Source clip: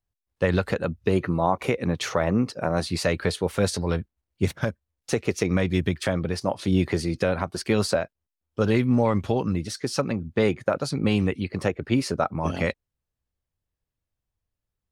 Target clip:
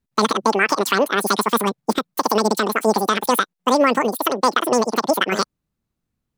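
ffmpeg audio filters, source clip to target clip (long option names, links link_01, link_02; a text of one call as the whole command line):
ffmpeg -i in.wav -af "asetrate=103194,aresample=44100,volume=5.5dB" out.wav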